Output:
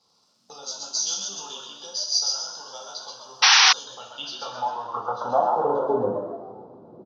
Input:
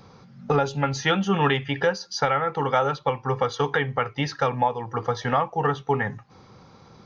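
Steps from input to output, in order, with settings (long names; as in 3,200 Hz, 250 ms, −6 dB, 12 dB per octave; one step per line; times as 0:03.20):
Butterworth band-reject 2,000 Hz, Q 0.71
high-shelf EQ 4,400 Hz +8 dB
in parallel at −1 dB: downward compressor, threshold −31 dBFS, peak gain reduction 13.5 dB
on the sum: low-pass that shuts in the quiet parts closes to 1,800 Hz, open at −21.5 dBFS
surface crackle 450 per second −53 dBFS
band-pass filter sweep 5,400 Hz → 350 Hz, 0:03.68–0:06.01
on a send: echo with shifted repeats 130 ms, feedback 41%, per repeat +89 Hz, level −4 dB
on the sum: coupled-rooms reverb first 0.54 s, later 2.4 s, from −18 dB, DRR −0.5 dB
sound drawn into the spectrogram noise, 0:03.42–0:03.73, 730–6,100 Hz −16 dBFS
level +1.5 dB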